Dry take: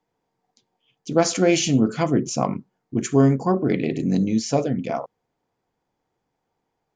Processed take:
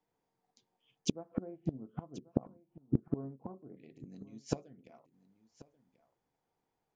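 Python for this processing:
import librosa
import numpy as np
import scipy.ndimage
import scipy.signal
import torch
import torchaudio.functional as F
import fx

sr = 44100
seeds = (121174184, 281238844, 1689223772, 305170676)

y = fx.lowpass(x, sr, hz=1100.0, slope=24, at=(1.12, 3.77))
y = fx.gate_flip(y, sr, shuts_db=-18.0, range_db=-27)
y = y + 10.0 ** (-14.0 / 20.0) * np.pad(y, (int(1086 * sr / 1000.0), 0))[:len(y)]
y = fx.upward_expand(y, sr, threshold_db=-54.0, expansion=1.5)
y = F.gain(torch.from_numpy(y), 5.0).numpy()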